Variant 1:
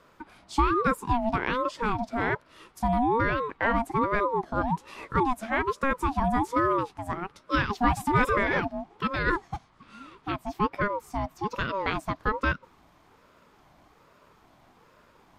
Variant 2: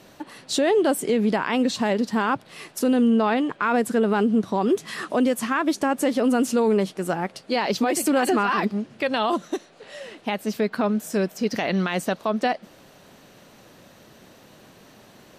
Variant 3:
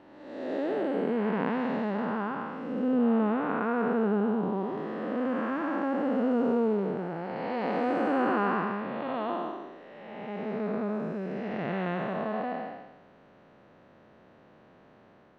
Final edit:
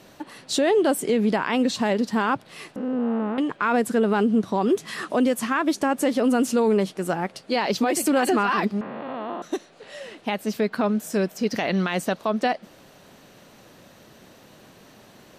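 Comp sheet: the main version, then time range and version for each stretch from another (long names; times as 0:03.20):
2
0:02.76–0:03.38: punch in from 3
0:08.81–0:09.42: punch in from 3
not used: 1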